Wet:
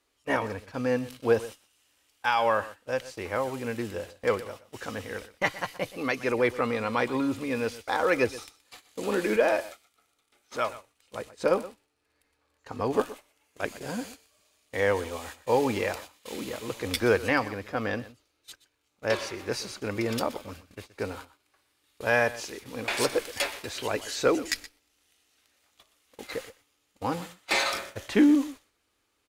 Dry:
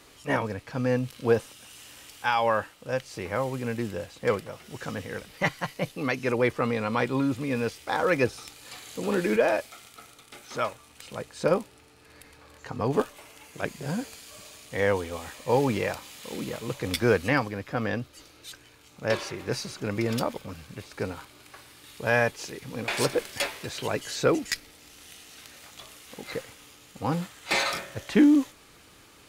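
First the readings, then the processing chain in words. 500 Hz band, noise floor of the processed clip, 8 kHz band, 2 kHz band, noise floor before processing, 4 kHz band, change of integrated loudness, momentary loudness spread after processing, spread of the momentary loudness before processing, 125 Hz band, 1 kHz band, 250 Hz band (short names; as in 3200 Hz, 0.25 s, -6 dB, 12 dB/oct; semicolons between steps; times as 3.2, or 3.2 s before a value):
-0.5 dB, -74 dBFS, -0.5 dB, 0.0 dB, -55 dBFS, 0.0 dB, -0.5 dB, 15 LU, 21 LU, -6.5 dB, 0.0 dB, -2.0 dB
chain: gate -41 dBFS, range -20 dB; bell 150 Hz -12.5 dB 0.63 oct; echo 0.123 s -17 dB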